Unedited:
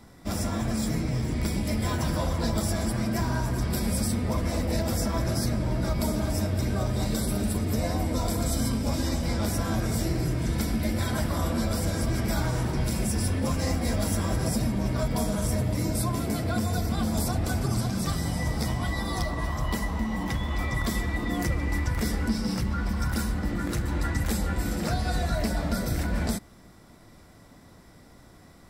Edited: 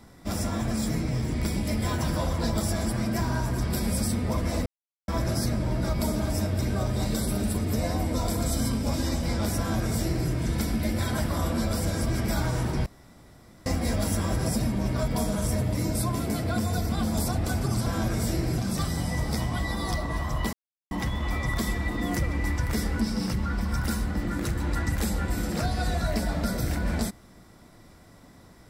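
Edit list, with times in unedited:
4.66–5.08 s: mute
9.58–10.30 s: copy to 17.86 s
12.86–13.66 s: room tone
19.81–20.19 s: mute

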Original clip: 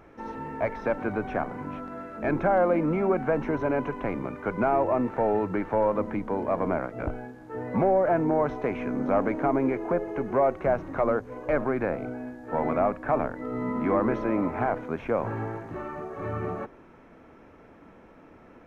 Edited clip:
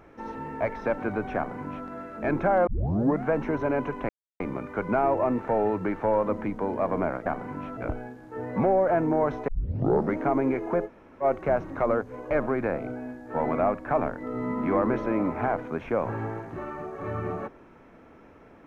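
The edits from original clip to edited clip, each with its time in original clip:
1.36–1.87 s: copy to 6.95 s
2.67 s: tape start 0.57 s
4.09 s: insert silence 0.31 s
8.66 s: tape start 0.69 s
10.05–10.41 s: room tone, crossfade 0.06 s

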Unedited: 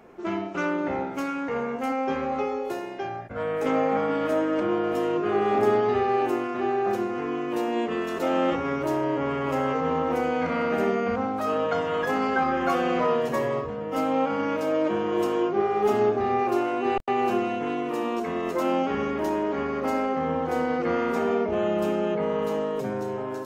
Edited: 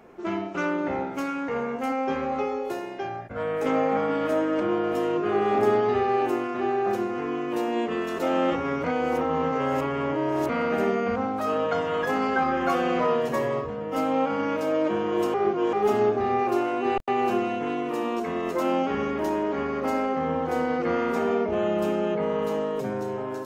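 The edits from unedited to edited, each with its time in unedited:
8.84–10.49 s: reverse
15.34–15.73 s: reverse

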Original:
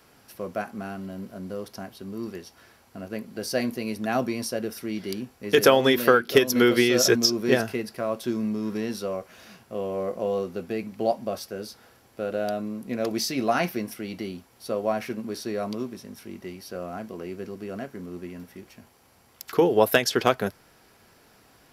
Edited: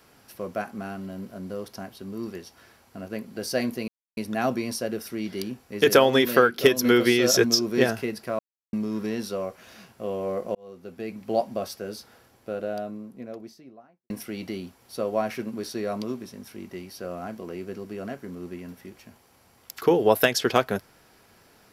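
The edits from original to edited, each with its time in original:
3.88 s: insert silence 0.29 s
8.10–8.44 s: mute
10.26–11.07 s: fade in
11.68–13.81 s: studio fade out

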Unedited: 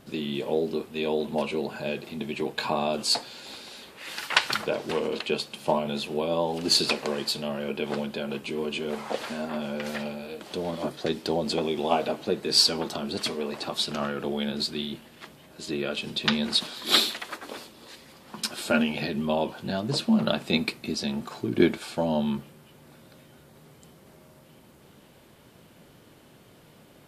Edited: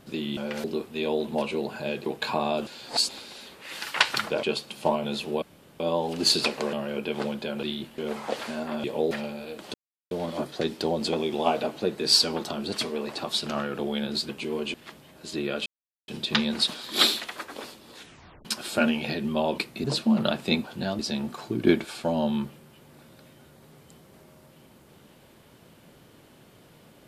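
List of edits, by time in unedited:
0.37–0.64 s: swap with 9.66–9.93 s
2.06–2.42 s: delete
3.03–3.45 s: reverse
4.79–5.26 s: delete
6.25 s: insert room tone 0.38 s
7.18–7.45 s: delete
8.35–8.80 s: swap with 14.74–15.09 s
10.56 s: insert silence 0.37 s
16.01 s: insert silence 0.42 s
17.88 s: tape stop 0.50 s
19.51–19.86 s: swap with 20.66–20.92 s

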